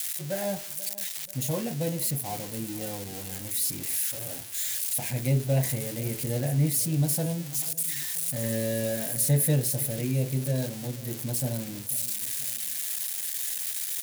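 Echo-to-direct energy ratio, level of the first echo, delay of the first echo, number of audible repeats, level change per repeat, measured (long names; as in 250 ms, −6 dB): −17.5 dB, −18.5 dB, 486 ms, 2, −5.0 dB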